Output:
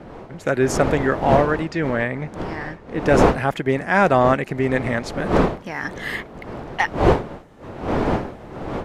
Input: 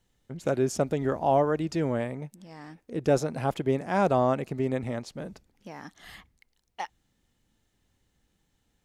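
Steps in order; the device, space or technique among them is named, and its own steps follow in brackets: 1.67–3.06 LPF 5400 Hz 12 dB/oct; bell 1800 Hz +12 dB 0.97 oct; smartphone video outdoors (wind noise 590 Hz -31 dBFS; AGC gain up to 12 dB; gain -1 dB; AAC 96 kbps 32000 Hz)

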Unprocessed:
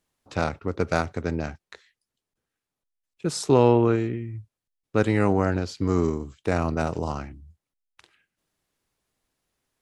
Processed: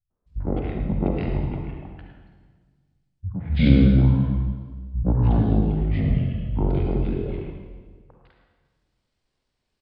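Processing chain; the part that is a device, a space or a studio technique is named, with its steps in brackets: three bands offset in time lows, mids, highs 0.1/0.26 s, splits 250/2900 Hz; 4.21–5.12 de-hum 79.03 Hz, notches 5; monster voice (pitch shift -10 st; formant shift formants -4.5 st; low shelf 240 Hz +4 dB; echo 0.108 s -10.5 dB; reverb RT60 1.5 s, pre-delay 45 ms, DRR 2.5 dB); gain -1 dB

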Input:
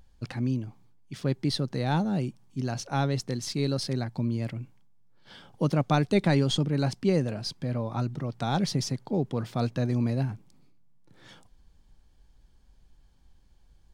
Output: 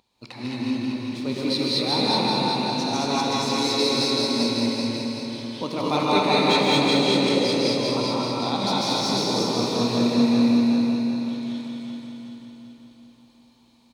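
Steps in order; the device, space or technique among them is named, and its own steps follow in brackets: regenerating reverse delay 0.192 s, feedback 70%, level -2 dB; de-esser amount 65%; stadium PA (HPF 200 Hz 12 dB/oct; bell 2400 Hz +7.5 dB 0.28 oct; loudspeakers at several distances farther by 54 m -11 dB, 74 m -5 dB; reverb RT60 3.4 s, pre-delay 0.112 s, DRR 6 dB); thirty-one-band EQ 160 Hz -9 dB, 1000 Hz +8 dB, 1600 Hz -10 dB, 4000 Hz +11 dB; non-linear reverb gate 0.26 s rising, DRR -3 dB; gain -2 dB

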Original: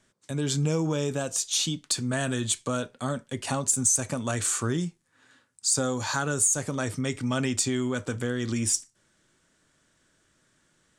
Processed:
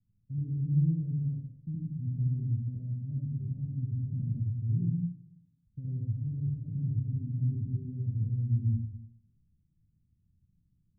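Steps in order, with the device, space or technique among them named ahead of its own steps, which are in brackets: club heard from the street (limiter -18.5 dBFS, peak gain reduction 8 dB; LPF 160 Hz 24 dB/oct; reverb RT60 0.65 s, pre-delay 66 ms, DRR -4.5 dB); gain -1 dB

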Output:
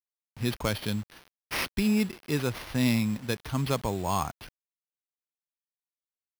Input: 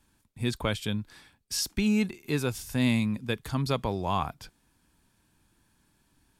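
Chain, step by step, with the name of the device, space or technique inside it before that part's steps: early 8-bit sampler (sample-rate reducer 7600 Hz, jitter 0%; bit-crush 8-bit)

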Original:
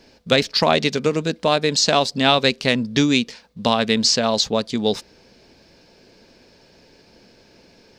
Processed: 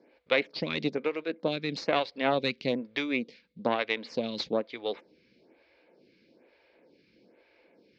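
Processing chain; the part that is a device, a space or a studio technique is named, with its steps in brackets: vibe pedal into a guitar amplifier (photocell phaser 1.1 Hz; tube stage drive 7 dB, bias 0.7; speaker cabinet 87–4200 Hz, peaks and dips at 100 Hz -9 dB, 320 Hz +7 dB, 520 Hz +6 dB, 2200 Hz +9 dB); gain -6.5 dB

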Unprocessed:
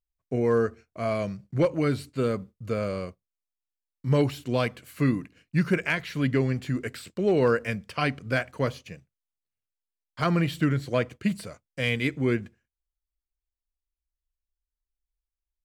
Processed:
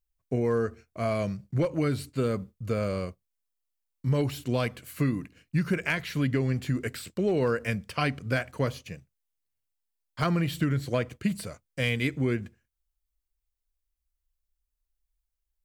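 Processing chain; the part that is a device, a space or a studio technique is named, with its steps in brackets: ASMR close-microphone chain (low shelf 100 Hz +7 dB; compressor, threshold -22 dBFS, peak gain reduction 6 dB; high shelf 8500 Hz +7 dB)

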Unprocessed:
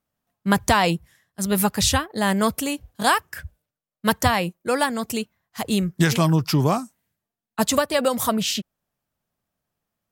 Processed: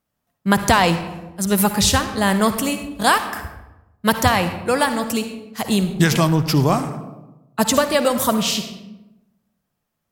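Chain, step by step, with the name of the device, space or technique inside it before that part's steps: saturated reverb return (on a send at -5.5 dB: reverb RT60 0.95 s, pre-delay 51 ms + soft clip -20 dBFS, distortion -9 dB); on the sum: gain +3 dB

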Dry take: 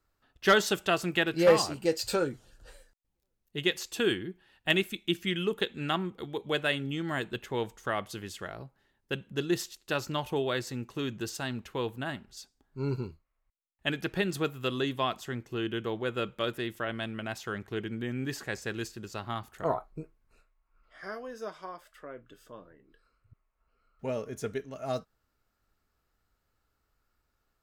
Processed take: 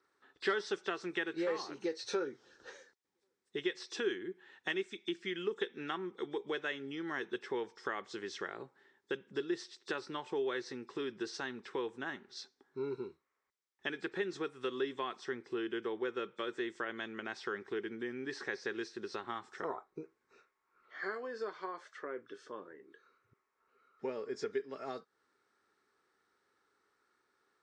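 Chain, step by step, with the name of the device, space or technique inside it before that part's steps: hearing aid with frequency lowering (nonlinear frequency compression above 3400 Hz 1.5:1; compressor 3:1, threshold -42 dBFS, peak gain reduction 18.5 dB; speaker cabinet 340–6900 Hz, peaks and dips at 390 Hz +7 dB, 640 Hz -10 dB, 1800 Hz +3 dB, 2800 Hz -7 dB, 4400 Hz -3 dB, 6500 Hz -4 dB); gain +5 dB

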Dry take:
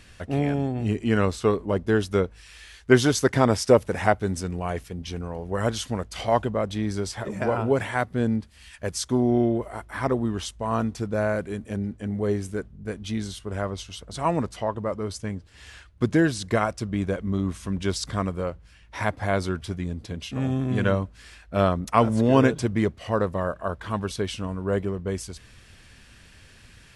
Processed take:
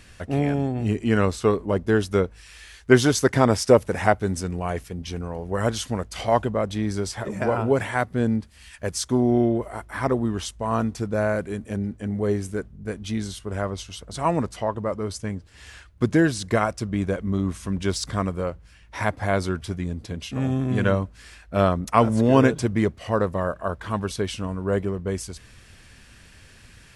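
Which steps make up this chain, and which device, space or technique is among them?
exciter from parts (in parallel at -13.5 dB: HPF 3100 Hz 24 dB/oct + soft clip -29.5 dBFS, distortion -10 dB); on the sum: gain +1.5 dB

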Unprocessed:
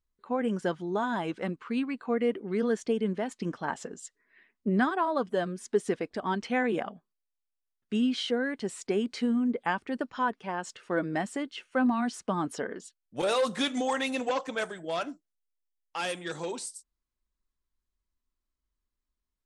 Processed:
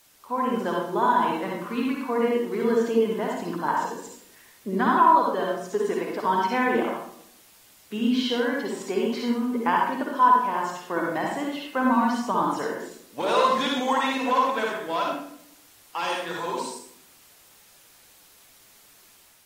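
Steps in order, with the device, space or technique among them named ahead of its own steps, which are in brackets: filmed off a television (BPF 220–6900 Hz; bell 1000 Hz +12 dB 0.34 oct; reverb RT60 0.65 s, pre-delay 49 ms, DRR -1.5 dB; white noise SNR 29 dB; AGC gain up to 3.5 dB; gain -3.5 dB; AAC 48 kbps 48000 Hz)

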